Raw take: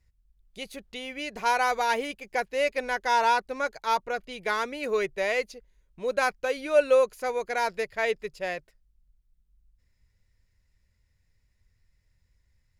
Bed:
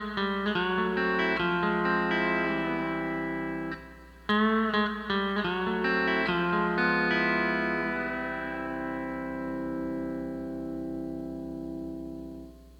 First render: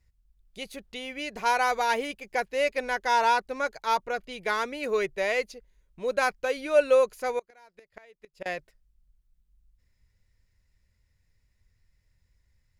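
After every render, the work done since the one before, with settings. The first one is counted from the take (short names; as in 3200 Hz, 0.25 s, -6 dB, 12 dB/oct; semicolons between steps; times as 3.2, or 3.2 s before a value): 7.39–8.46 flipped gate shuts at -25 dBFS, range -28 dB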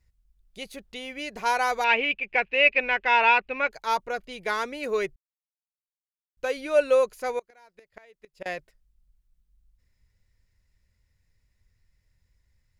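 1.84–3.71 synth low-pass 2600 Hz, resonance Q 7.5; 5.16–6.37 mute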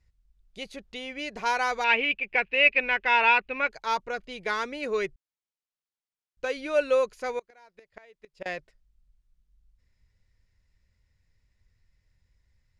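LPF 6900 Hz 12 dB/oct; dynamic EQ 670 Hz, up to -4 dB, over -34 dBFS, Q 1.3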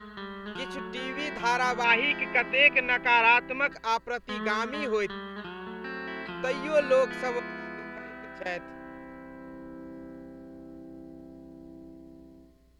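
add bed -10.5 dB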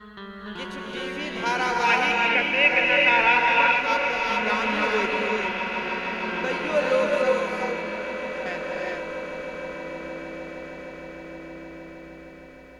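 swelling echo 0.155 s, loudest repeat 8, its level -18 dB; non-linear reverb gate 0.45 s rising, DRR -1.5 dB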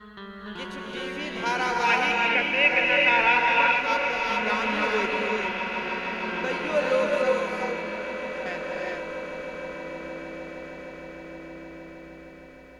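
gain -1.5 dB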